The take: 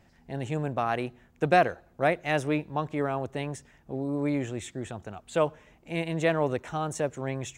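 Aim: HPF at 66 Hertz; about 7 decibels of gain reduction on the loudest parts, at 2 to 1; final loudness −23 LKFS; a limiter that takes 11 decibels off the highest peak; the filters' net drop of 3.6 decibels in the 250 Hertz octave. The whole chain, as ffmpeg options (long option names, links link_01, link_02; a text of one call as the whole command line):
ffmpeg -i in.wav -af "highpass=66,equalizer=frequency=250:width_type=o:gain=-5,acompressor=threshold=-29dB:ratio=2,volume=15dB,alimiter=limit=-10.5dB:level=0:latency=1" out.wav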